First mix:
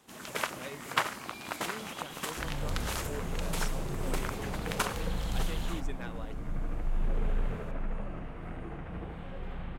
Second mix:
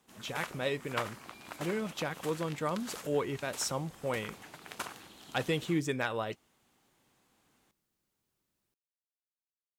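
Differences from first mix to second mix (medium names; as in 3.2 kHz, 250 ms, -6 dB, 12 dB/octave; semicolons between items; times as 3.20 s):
speech +11.5 dB; first sound -8.0 dB; second sound: muted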